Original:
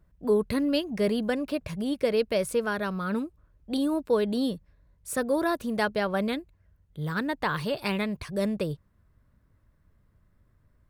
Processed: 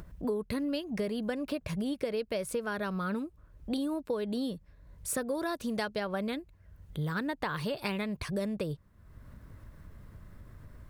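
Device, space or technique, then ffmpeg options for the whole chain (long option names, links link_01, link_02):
upward and downward compression: -filter_complex "[0:a]asettb=1/sr,asplit=3[link_01][link_02][link_03];[link_01]atrim=end=5.354[link_04];[link_02]atrim=start=5.35:end=6,asetpts=PTS-STARTPTS,afade=type=in:duration=0.004:curve=qsin,afade=type=out:start_time=0.646:duration=0.004:curve=qsin,equalizer=frequency=5400:width=0.74:gain=5.5[link_05];[link_03]atrim=start=5.996[link_06];[link_04][link_05]acrossfade=duration=0.004:curve1=hsin:curve2=qsin[link_07];[link_07][link_06]acrossfade=duration=0.004:curve1=qsin:curve2=hsin,acompressor=mode=upward:threshold=-41dB:ratio=2.5,acompressor=threshold=-34dB:ratio=6,volume=3.5dB"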